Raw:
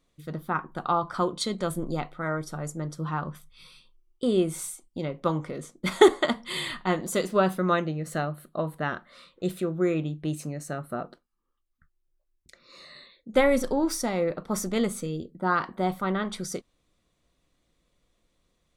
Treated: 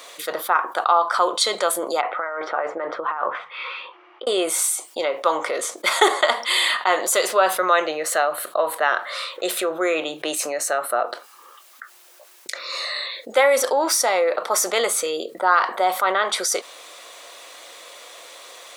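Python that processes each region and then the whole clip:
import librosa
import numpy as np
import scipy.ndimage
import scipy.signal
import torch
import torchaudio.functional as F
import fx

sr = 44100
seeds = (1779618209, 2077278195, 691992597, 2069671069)

y = fx.chain(x, sr, fx.lowpass(hz=2300.0, slope=24),
    fx.peak_eq(hz=110.0, db=-13.0, octaves=0.89),
    fx.over_compress(threshold_db=-37.0, ratio=-0.5), at=(2.01, 4.27))
y = scipy.signal.sosfilt(scipy.signal.butter(4, 540.0, 'highpass', fs=sr, output='sos'), y)
y = fx.env_flatten(y, sr, amount_pct=50)
y = y * 10.0 ** (5.0 / 20.0)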